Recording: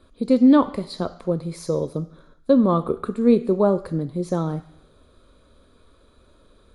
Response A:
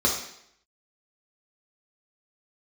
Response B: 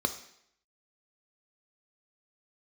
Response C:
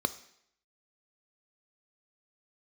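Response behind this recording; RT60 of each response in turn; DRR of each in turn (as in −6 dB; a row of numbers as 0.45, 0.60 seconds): C; 0.70, 0.70, 0.70 seconds; −3.0, 7.0, 11.5 decibels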